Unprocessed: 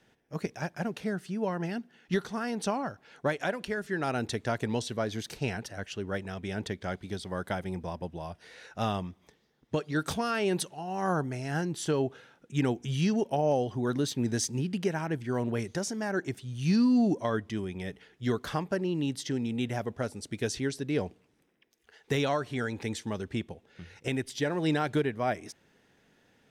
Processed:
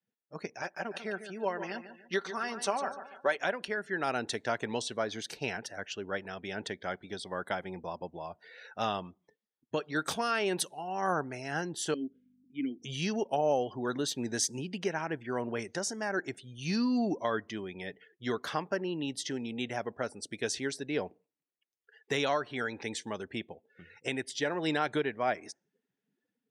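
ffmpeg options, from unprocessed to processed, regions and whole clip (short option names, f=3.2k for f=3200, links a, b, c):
-filter_complex "[0:a]asettb=1/sr,asplit=3[a][b][c];[a]atrim=end=0.624[d];[b]atrim=start=0.62:end=3.36,asetpts=PTS-STARTPTS,afade=t=in:d=0.004:c=qsin,afade=t=out:st=2.736:d=0.004:c=qsin,equalizer=f=140:t=o:w=1.1:g=-14,aecho=1:1:5.2:0.42,atrim=end_sample=120834,aecho=1:1:146|292|438|584:0.282|0.11|0.0429|0.0167,atrim=end_sample=120834[e];[c]atrim=start=3.356[f];[d][e]acrossfade=d=0.004:c1=hsin:c2=qsin[g];[g][f]acrossfade=d=0.004:c1=qsin:c2=hsin,asettb=1/sr,asplit=3[h][i][j];[h]atrim=end=11.944[k];[i]atrim=start=11.94:end=12.82,asetpts=PTS-STARTPTS,afade=t=in:d=0.004:c=qsin,afade=t=out:st=0.876:d=0.004:c=qsin,aeval=exprs='val(0)+0.00631*(sin(2*PI*50*n/s)+sin(2*PI*2*50*n/s)/2+sin(2*PI*3*50*n/s)/3+sin(2*PI*4*50*n/s)/4+sin(2*PI*5*50*n/s)/5)':c=same,asplit=3[l][m][n];[l]bandpass=f=270:t=q:w=8,volume=0dB[o];[m]bandpass=f=2.29k:t=q:w=8,volume=-6dB[p];[n]bandpass=f=3.01k:t=q:w=8,volume=-9dB[q];[o][p][q]amix=inputs=3:normalize=0,lowshelf=f=490:g=4.5[r];[j]atrim=start=12.816[s];[k][r]acrossfade=d=0.004:c1=hsin:c2=qsin[t];[t][s]acrossfade=d=0.004:c1=qsin:c2=hsin,afftdn=nr=26:nf=-53,highpass=f=510:p=1,dynaudnorm=f=360:g=3:m=3.5dB,volume=-2dB"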